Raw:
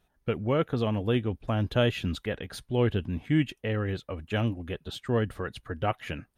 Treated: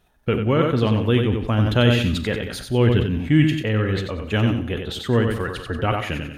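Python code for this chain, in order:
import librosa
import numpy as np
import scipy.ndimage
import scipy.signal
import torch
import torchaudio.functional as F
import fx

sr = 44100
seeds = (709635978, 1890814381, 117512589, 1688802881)

p1 = fx.dynamic_eq(x, sr, hz=670.0, q=2.2, threshold_db=-42.0, ratio=4.0, max_db=-6)
p2 = p1 + fx.echo_feedback(p1, sr, ms=92, feedback_pct=31, wet_db=-6.5, dry=0)
p3 = fx.rev_schroeder(p2, sr, rt60_s=0.45, comb_ms=26, drr_db=14.0)
p4 = fx.sustainer(p3, sr, db_per_s=68.0)
y = p4 * 10.0 ** (7.5 / 20.0)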